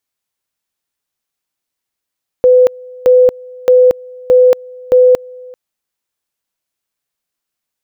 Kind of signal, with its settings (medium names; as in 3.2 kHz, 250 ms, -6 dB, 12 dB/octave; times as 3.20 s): two-level tone 503 Hz -3.5 dBFS, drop 25.5 dB, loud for 0.23 s, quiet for 0.39 s, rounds 5